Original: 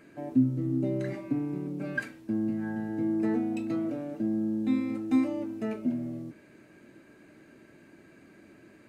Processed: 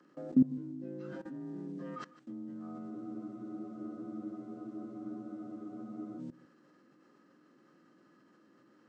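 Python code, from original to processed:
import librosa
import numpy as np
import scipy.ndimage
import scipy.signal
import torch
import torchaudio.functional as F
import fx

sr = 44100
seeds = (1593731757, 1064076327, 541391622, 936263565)

p1 = fx.partial_stretch(x, sr, pct=86)
p2 = scipy.signal.sosfilt(scipy.signal.butter(4, 140.0, 'highpass', fs=sr, output='sos'), p1)
p3 = fx.level_steps(p2, sr, step_db=22)
p4 = p3 + fx.echo_single(p3, sr, ms=151, db=-18.0, dry=0)
p5 = fx.spec_freeze(p4, sr, seeds[0], at_s=2.92, hold_s=3.27)
y = p5 * librosa.db_to_amplitude(1.5)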